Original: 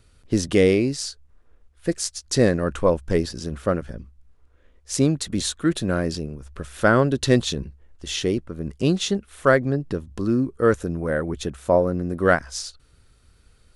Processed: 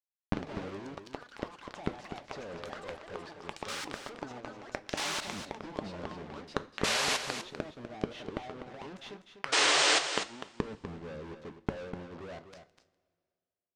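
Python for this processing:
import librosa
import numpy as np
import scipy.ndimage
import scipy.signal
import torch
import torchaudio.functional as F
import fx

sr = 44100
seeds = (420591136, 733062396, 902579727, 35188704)

p1 = fx.leveller(x, sr, passes=3)
p2 = p1 * (1.0 - 0.79 / 2.0 + 0.79 / 2.0 * np.cos(2.0 * np.pi * 5.5 * (np.arange(len(p1)) / sr)))
p3 = fx.backlash(p2, sr, play_db=-27.5)
p4 = p2 + F.gain(torch.from_numpy(p3), -6.0).numpy()
p5 = fx.filter_lfo_bandpass(p4, sr, shape='saw_up', hz=0.19, low_hz=230.0, high_hz=2600.0, q=1.3)
p6 = fx.fuzz(p5, sr, gain_db=35.0, gate_db=-36.0)
p7 = fx.gate_flip(p6, sr, shuts_db=-18.0, range_db=-31)
p8 = fx.spec_paint(p7, sr, seeds[0], shape='noise', start_s=9.52, length_s=0.47, low_hz=280.0, high_hz=9400.0, level_db=-24.0)
p9 = fx.rev_double_slope(p8, sr, seeds[1], early_s=0.27, late_s=2.0, knee_db=-18, drr_db=10.5)
p10 = fx.echo_pitch(p9, sr, ms=105, semitones=6, count=3, db_per_echo=-3.0)
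p11 = fx.air_absorb(p10, sr, metres=110.0)
p12 = p11 + fx.echo_single(p11, sr, ms=248, db=-9.5, dry=0)
y = F.gain(torch.from_numpy(p12), 2.5).numpy()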